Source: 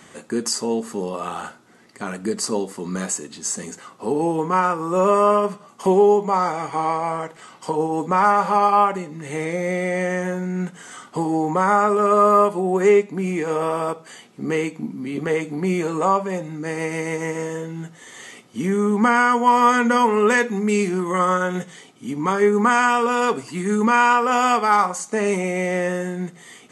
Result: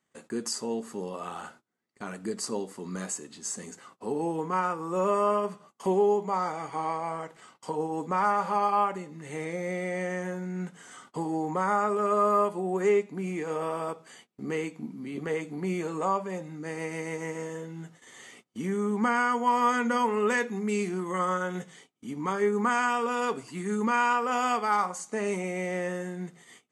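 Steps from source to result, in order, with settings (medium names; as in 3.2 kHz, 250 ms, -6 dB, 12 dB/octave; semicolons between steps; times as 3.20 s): gate -43 dBFS, range -24 dB; trim -9 dB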